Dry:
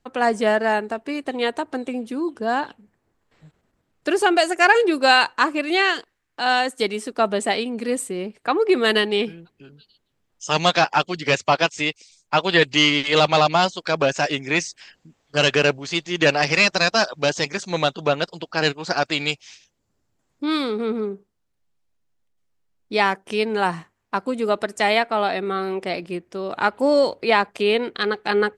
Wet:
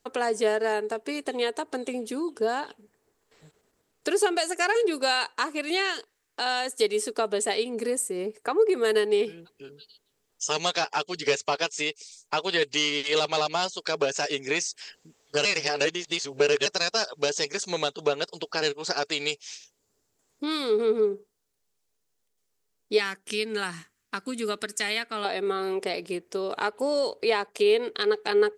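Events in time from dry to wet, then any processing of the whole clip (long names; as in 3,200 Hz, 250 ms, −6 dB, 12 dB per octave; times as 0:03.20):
0:07.75–0:09.23: parametric band 3,500 Hz −8 dB 1 octave
0:15.45–0:16.66: reverse
0:22.98–0:25.25: flat-topped bell 630 Hz −12 dB
whole clip: bass and treble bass −7 dB, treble +10 dB; downward compressor 2 to 1, threshold −29 dBFS; parametric band 430 Hz +10.5 dB 0.22 octaves; level −1 dB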